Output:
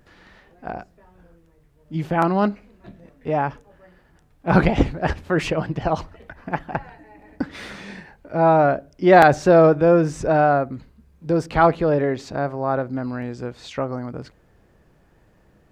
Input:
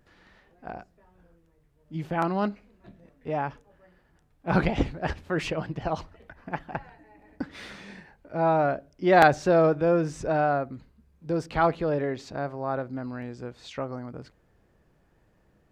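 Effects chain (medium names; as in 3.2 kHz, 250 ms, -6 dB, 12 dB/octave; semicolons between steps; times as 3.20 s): dynamic bell 3.8 kHz, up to -3 dB, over -47 dBFS, Q 0.73; loudness maximiser +8.5 dB; trim -1 dB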